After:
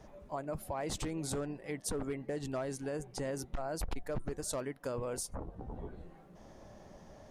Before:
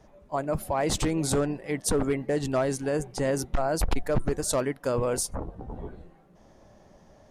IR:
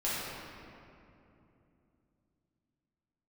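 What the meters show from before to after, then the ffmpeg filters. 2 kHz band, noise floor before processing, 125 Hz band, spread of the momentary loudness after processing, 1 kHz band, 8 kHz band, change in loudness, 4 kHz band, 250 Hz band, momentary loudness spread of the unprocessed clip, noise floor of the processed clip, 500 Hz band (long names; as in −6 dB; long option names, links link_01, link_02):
−11.0 dB, −56 dBFS, −11.0 dB, 18 LU, −11.0 dB, −10.0 dB, −11.5 dB, −10.5 dB, −11.0 dB, 9 LU, −57 dBFS, −11.0 dB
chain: -af "acompressor=threshold=-46dB:ratio=2,volume=1dB"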